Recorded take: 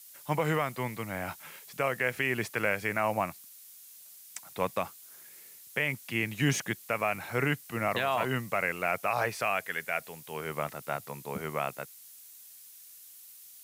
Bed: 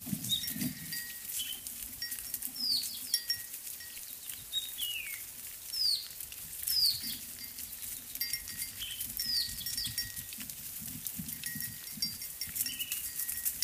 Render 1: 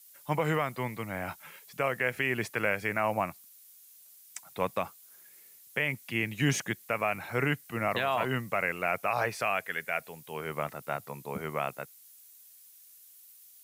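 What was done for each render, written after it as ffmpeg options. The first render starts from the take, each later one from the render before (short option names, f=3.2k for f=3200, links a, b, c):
-af "afftdn=nr=6:nf=-52"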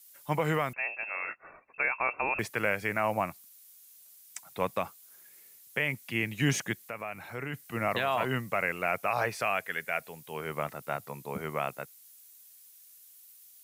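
-filter_complex "[0:a]asettb=1/sr,asplit=3[a][b][c];[a]atrim=end=0.734[d];[b]atrim=start=0.73:end=2.39,asetpts=PTS-STARTPTS,afade=t=in:d=0.004:c=qsin,afade=t=out:st=1.656:d=0.004:c=qsin,lowpass=f=2.4k:t=q:w=0.5098,lowpass=f=2.4k:t=q:w=0.6013,lowpass=f=2.4k:t=q:w=0.9,lowpass=f=2.4k:t=q:w=2.563,afreqshift=-2800[e];[c]atrim=start=2.386[f];[d][e]acrossfade=d=0.004:c1=hsin:c2=qsin[g];[g][f]acrossfade=d=0.004:c1=qsin:c2=hsin,asplit=3[h][i][j];[h]afade=t=out:st=6.82:d=0.02[k];[i]acompressor=threshold=-48dB:ratio=1.5:attack=3.2:release=140:knee=1:detection=peak,afade=t=in:st=6.82:d=0.02,afade=t=out:st=7.53:d=0.02[l];[j]afade=t=in:st=7.53:d=0.02[m];[k][l][m]amix=inputs=3:normalize=0"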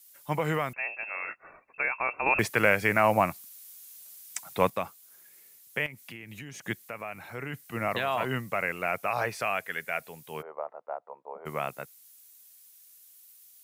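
-filter_complex "[0:a]asettb=1/sr,asplit=3[a][b][c];[a]atrim=end=2.264[d];[b]atrim=start=2.26:end=4.7,asetpts=PTS-STARTPTS,afade=t=in:d=0.004:c=qsin,afade=t=out:st=2.436:d=0.004:c=qsin,acontrast=67[e];[c]atrim=start=4.696[f];[d][e]acrossfade=d=0.004:c1=hsin:c2=qsin[g];[g][f]acrossfade=d=0.004:c1=qsin:c2=hsin,asettb=1/sr,asplit=3[h][i][j];[h]atrim=end=5.864[k];[i]atrim=start=5.86:end=6.67,asetpts=PTS-STARTPTS,afade=t=in:d=0.004:c=qsin,afade=t=out:st=0.806:d=0.004:c=qsin,acompressor=threshold=-39dB:ratio=12:attack=3.2:release=140:knee=1:detection=peak[l];[j]atrim=start=6.666[m];[k][l]acrossfade=d=0.004:c1=hsin:c2=qsin[n];[n][m]acrossfade=d=0.004:c1=qsin:c2=hsin,asplit=3[o][p][q];[o]afade=t=out:st=10.41:d=0.02[r];[p]asuperpass=centerf=710:order=4:qfactor=1.3,afade=t=in:st=10.41:d=0.02,afade=t=out:st=11.45:d=0.02[s];[q]afade=t=in:st=11.45:d=0.02[t];[r][s][t]amix=inputs=3:normalize=0"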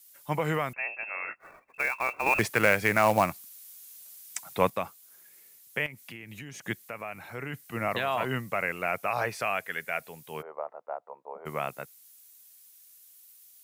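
-filter_complex "[0:a]asettb=1/sr,asplit=3[a][b][c];[a]atrim=end=1.404[d];[b]atrim=start=1.4:end=3.35,asetpts=PTS-STARTPTS,afade=t=in:d=0.004:c=qsin,afade=t=out:st=1.946:d=0.004:c=qsin,acrusher=bits=4:mode=log:mix=0:aa=0.000001[e];[c]atrim=start=3.346[f];[d][e]acrossfade=d=0.004:c1=hsin:c2=qsin[g];[g][f]acrossfade=d=0.004:c1=qsin:c2=hsin"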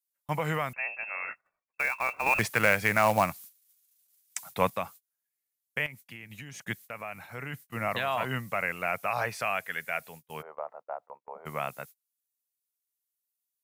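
-af "agate=range=-31dB:threshold=-45dB:ratio=16:detection=peak,equalizer=f=360:t=o:w=0.86:g=-6.5"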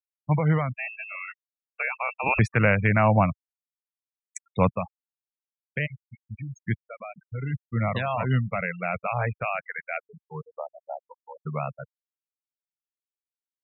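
-af "afftfilt=real='re*gte(hypot(re,im),0.0355)':imag='im*gte(hypot(re,im),0.0355)':win_size=1024:overlap=0.75,equalizer=f=92:w=0.35:g=14.5"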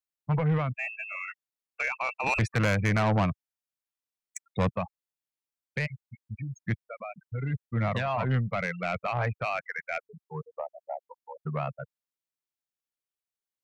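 -af "asoftclip=type=tanh:threshold=-20.5dB"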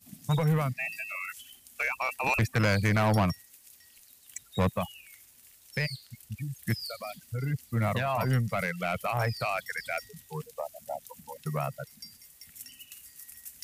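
-filter_complex "[1:a]volume=-11.5dB[a];[0:a][a]amix=inputs=2:normalize=0"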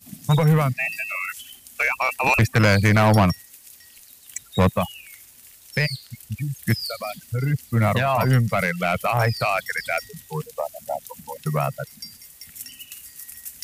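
-af "volume=8.5dB"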